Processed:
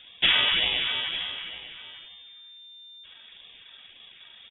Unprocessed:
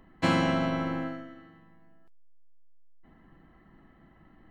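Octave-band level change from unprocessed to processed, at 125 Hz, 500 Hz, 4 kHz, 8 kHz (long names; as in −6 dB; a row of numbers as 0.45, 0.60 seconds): −16.0 dB, −10.0 dB, +19.0 dB, can't be measured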